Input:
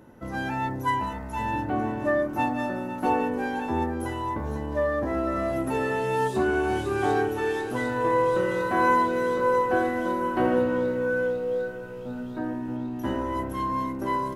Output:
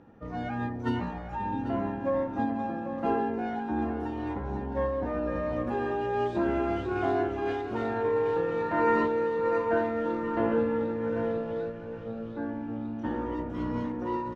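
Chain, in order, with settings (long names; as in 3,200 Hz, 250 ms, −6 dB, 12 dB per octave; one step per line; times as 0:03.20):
phase-vocoder pitch shift with formants kept −1.5 semitones
high-frequency loss of the air 180 metres
single-tap delay 792 ms −11 dB
level −3 dB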